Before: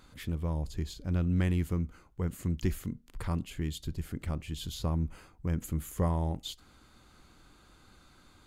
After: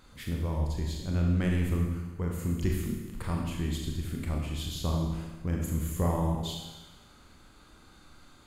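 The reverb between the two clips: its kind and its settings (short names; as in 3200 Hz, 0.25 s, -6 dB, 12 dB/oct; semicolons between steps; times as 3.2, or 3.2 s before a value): Schroeder reverb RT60 1.2 s, combs from 27 ms, DRR -0.5 dB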